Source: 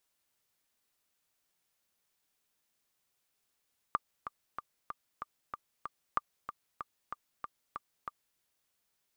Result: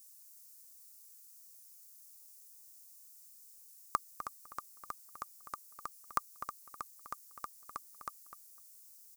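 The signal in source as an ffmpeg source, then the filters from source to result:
-f lavfi -i "aevalsrc='pow(10,(-15-10.5*gte(mod(t,7*60/189),60/189))/20)*sin(2*PI*1190*mod(t,60/189))*exp(-6.91*mod(t,60/189)/0.03)':d=4.44:s=44100"
-filter_complex "[0:a]aexciter=amount=11.9:drive=3.6:freq=4.8k,asplit=2[a][b];[b]adelay=252,lowpass=f=3.6k:p=1,volume=-10.5dB,asplit=2[c][d];[d]adelay=252,lowpass=f=3.6k:p=1,volume=0.15[e];[a][c][e]amix=inputs=3:normalize=0"

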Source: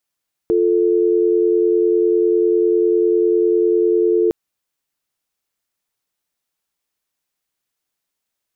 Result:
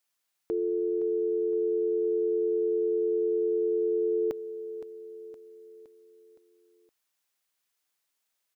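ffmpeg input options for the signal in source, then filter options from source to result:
-f lavfi -i "aevalsrc='0.178*(sin(2*PI*350*t)+sin(2*PI*440*t))':d=3.81:s=44100"
-filter_complex "[0:a]lowshelf=f=390:g=-11,alimiter=limit=-22.5dB:level=0:latency=1:release=49,asplit=2[a][b];[b]aecho=0:1:516|1032|1548|2064|2580:0.224|0.116|0.0605|0.0315|0.0164[c];[a][c]amix=inputs=2:normalize=0"

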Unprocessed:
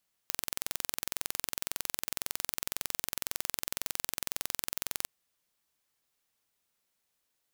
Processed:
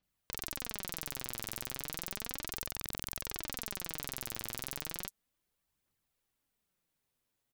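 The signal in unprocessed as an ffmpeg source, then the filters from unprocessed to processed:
-f lavfi -i "aevalsrc='0.596*eq(mod(n,2014),0)':d=4.76:s=44100"
-filter_complex "[0:a]lowshelf=f=320:g=11,flanger=delay=0:depth=9.3:regen=48:speed=0.34:shape=triangular,acrossover=split=5700[a][b];[b]adelay=30[c];[a][c]amix=inputs=2:normalize=0"

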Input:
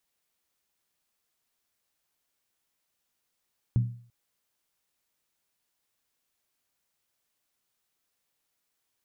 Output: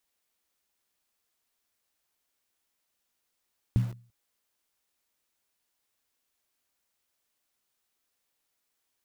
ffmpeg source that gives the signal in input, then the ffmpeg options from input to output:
-f lavfi -i "aevalsrc='0.133*pow(10,-3*t/0.48)*sin(2*PI*119*t)+0.0376*pow(10,-3*t/0.38)*sin(2*PI*189.7*t)+0.0106*pow(10,-3*t/0.328)*sin(2*PI*254.2*t)+0.00299*pow(10,-3*t/0.317)*sin(2*PI*273.2*t)+0.000841*pow(10,-3*t/0.295)*sin(2*PI*315.7*t)':d=0.34:s=44100"
-filter_complex "[0:a]equalizer=f=140:t=o:w=0.38:g=-10,asplit=2[a][b];[b]acrusher=bits=6:mix=0:aa=0.000001,volume=-5dB[c];[a][c]amix=inputs=2:normalize=0"

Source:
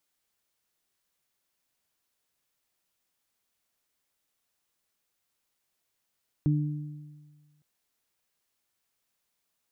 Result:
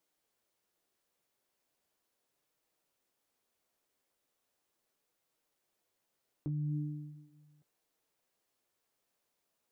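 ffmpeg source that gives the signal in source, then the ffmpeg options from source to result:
-f lavfi -i "aevalsrc='0.0944*pow(10,-3*t/1.54)*sin(2*PI*149*t)+0.0531*pow(10,-3*t/1.18)*sin(2*PI*298*t)':d=1.16:s=44100"
-af "equalizer=f=460:t=o:w=2.2:g=9,alimiter=level_in=0.5dB:limit=-24dB:level=0:latency=1:release=118,volume=-0.5dB,flanger=delay=6.2:depth=8.9:regen=-39:speed=0.38:shape=sinusoidal"

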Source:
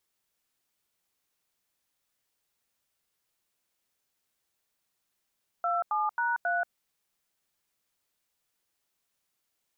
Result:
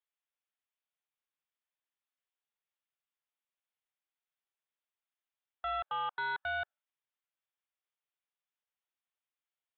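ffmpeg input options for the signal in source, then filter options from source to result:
-f lavfi -i "aevalsrc='0.0398*clip(min(mod(t,0.27),0.183-mod(t,0.27))/0.002,0,1)*(eq(floor(t/0.27),0)*(sin(2*PI*697*mod(t,0.27))+sin(2*PI*1336*mod(t,0.27)))+eq(floor(t/0.27),1)*(sin(2*PI*852*mod(t,0.27))+sin(2*PI*1209*mod(t,0.27)))+eq(floor(t/0.27),2)*(sin(2*PI*941*mod(t,0.27))+sin(2*PI*1477*mod(t,0.27)))+eq(floor(t/0.27),3)*(sin(2*PI*697*mod(t,0.27))+sin(2*PI*1477*mod(t,0.27))))':d=1.08:s=44100"
-af "afftdn=nr=12:nf=-49,highpass=620,aresample=8000,asoftclip=type=tanh:threshold=-31.5dB,aresample=44100"

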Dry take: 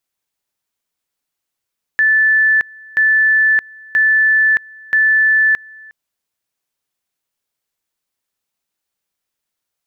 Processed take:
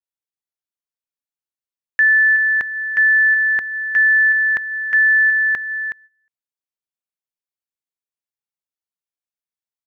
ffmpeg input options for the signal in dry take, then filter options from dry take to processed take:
-f lavfi -i "aevalsrc='pow(10,(-9-26*gte(mod(t,0.98),0.62))/20)*sin(2*PI*1750*t)':d=3.92:s=44100"
-filter_complex "[0:a]agate=range=-18dB:threshold=-30dB:ratio=16:detection=peak,asplit=2[a][b];[b]aecho=0:1:370:0.282[c];[a][c]amix=inputs=2:normalize=0,adynamicequalizer=threshold=0.0794:dfrequency=1800:dqfactor=0.7:tfrequency=1800:tqfactor=0.7:attack=5:release=100:ratio=0.375:range=2:mode=cutabove:tftype=highshelf"

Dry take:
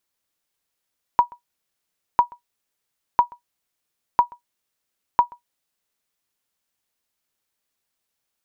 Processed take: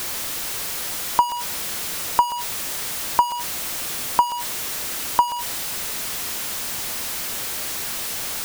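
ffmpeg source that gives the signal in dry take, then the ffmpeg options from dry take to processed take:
-f lavfi -i "aevalsrc='0.562*(sin(2*PI*964*mod(t,1))*exp(-6.91*mod(t,1)/0.12)+0.0473*sin(2*PI*964*max(mod(t,1)-0.13,0))*exp(-6.91*max(mod(t,1)-0.13,0)/0.12))':d=5:s=44100"
-af "aeval=exprs='val(0)+0.5*0.0841*sgn(val(0))':c=same"

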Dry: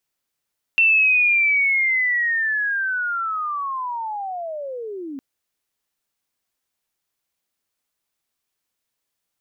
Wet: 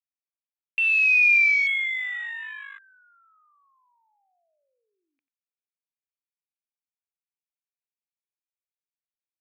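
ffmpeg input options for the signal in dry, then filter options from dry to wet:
-f lavfi -i "aevalsrc='pow(10,(-12-17*t/4.41)/20)*sin(2*PI*(2700*t-2440*t*t/(2*4.41)))':d=4.41:s=44100"
-af "bandpass=f=2.4k:t=q:w=8:csg=0,aecho=1:1:91:0.224,afwtdn=0.0251"

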